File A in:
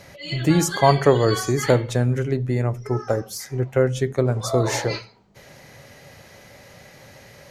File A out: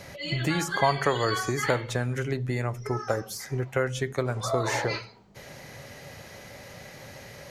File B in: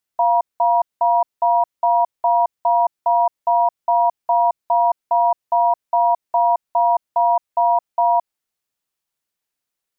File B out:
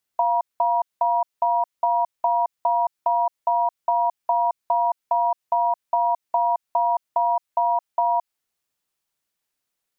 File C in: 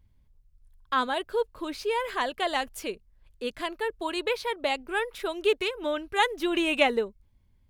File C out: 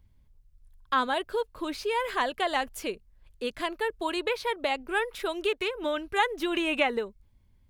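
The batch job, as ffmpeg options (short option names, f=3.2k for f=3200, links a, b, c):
-filter_complex "[0:a]acrossover=split=890|2400[a][b][c];[a]acompressor=threshold=-29dB:ratio=4[d];[b]acompressor=threshold=-24dB:ratio=4[e];[c]acompressor=threshold=-38dB:ratio=4[f];[d][e][f]amix=inputs=3:normalize=0,volume=1.5dB"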